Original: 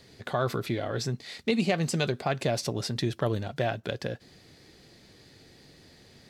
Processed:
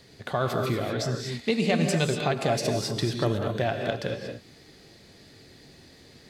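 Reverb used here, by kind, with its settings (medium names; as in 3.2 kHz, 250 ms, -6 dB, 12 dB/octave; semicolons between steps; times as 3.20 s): gated-style reverb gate 260 ms rising, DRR 3 dB; trim +1 dB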